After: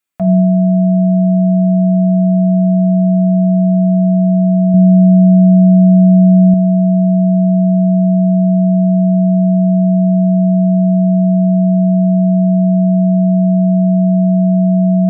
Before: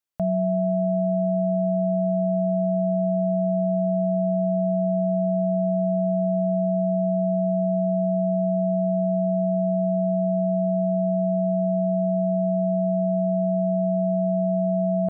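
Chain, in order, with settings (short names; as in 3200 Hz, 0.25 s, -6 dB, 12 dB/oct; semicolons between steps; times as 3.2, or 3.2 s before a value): reverb RT60 0.70 s, pre-delay 3 ms, DRR 2.5 dB; vocal rider 0.5 s; 4.74–6.54 low shelf 260 Hz +6.5 dB; gain +4.5 dB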